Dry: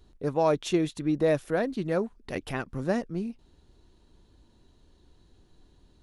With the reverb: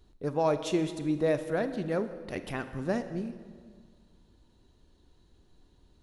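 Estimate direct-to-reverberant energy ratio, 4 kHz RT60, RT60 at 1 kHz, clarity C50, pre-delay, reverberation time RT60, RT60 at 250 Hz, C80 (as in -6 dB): 10.0 dB, 1.4 s, 1.7 s, 11.0 dB, 27 ms, 1.7 s, 1.9 s, 12.5 dB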